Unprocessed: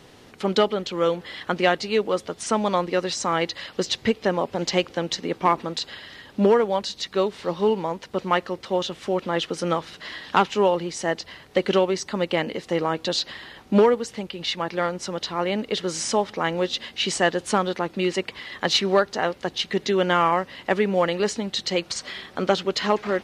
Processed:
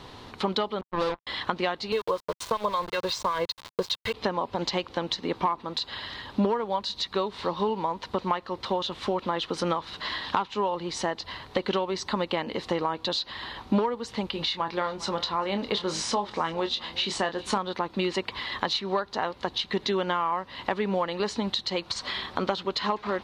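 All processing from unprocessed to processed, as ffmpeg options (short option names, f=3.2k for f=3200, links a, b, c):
-filter_complex "[0:a]asettb=1/sr,asplit=3[a][b][c];[a]atrim=end=0.814[d];[b]atrim=start=0.81:end=1.27,asetpts=PTS-STARTPTS,afade=t=in:d=0.004:c=qsin,afade=t=out:st=0.456:d=0.004:c=qsin,lowpass=1.2k,acrusher=bits=3:mix=0:aa=0.5,agate=range=-33dB:threshold=-44dB:ratio=3:release=100:detection=peak[e];[c]atrim=start=1.266[f];[d][e]acrossfade=d=0.004:c1=hsin:c2=qsin[g];[g][f]acrossfade=d=0.004:c1=qsin:c2=hsin,asettb=1/sr,asplit=3[h][i][j];[h]atrim=end=1.924[k];[i]atrim=start=1.92:end=4.14,asetpts=PTS-STARTPTS,afade=t=in:d=0.004:c=qsin,afade=t=out:st=2.216:d=0.004:c=qsin,aecho=1:1:1.9:0.88,atrim=end_sample=97902,acrossover=split=1300[l][m];[l]aeval=exprs='val(0)*(1-0.7/2+0.7/2*cos(2*PI*5.3*n/s))':c=same[n];[m]aeval=exprs='val(0)*(1-0.7/2-0.7/2*cos(2*PI*5.3*n/s))':c=same[o];[n][o]amix=inputs=2:normalize=0,aeval=exprs='val(0)*gte(abs(val(0)),0.0266)':c=same[p];[j]atrim=start=4.136[q];[k][p]acrossfade=d=0.004:c1=hsin:c2=qsin[r];[r][q]acrossfade=d=0.004:c1=qsin:c2=hsin,asettb=1/sr,asplit=3[s][t][u];[s]atrim=end=14.324[v];[t]atrim=start=14.32:end=17.58,asetpts=PTS-STARTPTS,afade=t=in:d=0.004:c=qsin,afade=t=out:st=3.256:d=0.004:c=qsin,asplit=2[w][x];[x]adelay=25,volume=-8.5dB[y];[w][y]amix=inputs=2:normalize=0,atrim=end_sample=143766,aecho=1:1:399:0.0794,atrim=end_sample=143766[z];[u]atrim=start=17.576[aa];[v][z]acrossfade=d=0.004:c1=hsin:c2=qsin[ab];[ab][aa]acrossfade=d=0.004:c1=qsin:c2=hsin,equalizer=f=160:t=o:w=0.67:g=-6,equalizer=f=1k:t=o:w=0.67:g=11,equalizer=f=4k:t=o:w=0.67:g=10,acompressor=threshold=-25dB:ratio=5,bass=f=250:g=8,treble=f=4k:g=-5"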